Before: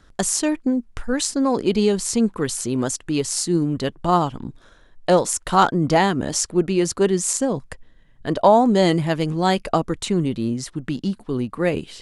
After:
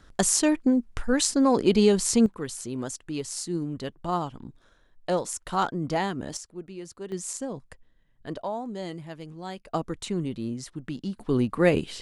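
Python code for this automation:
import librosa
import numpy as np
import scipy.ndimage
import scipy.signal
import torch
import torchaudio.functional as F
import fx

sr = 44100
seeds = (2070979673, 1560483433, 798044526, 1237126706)

y = fx.gain(x, sr, db=fx.steps((0.0, -1.0), (2.26, -10.0), (6.37, -20.0), (7.12, -12.0), (8.42, -18.5), (9.74, -8.5), (11.19, 0.5)))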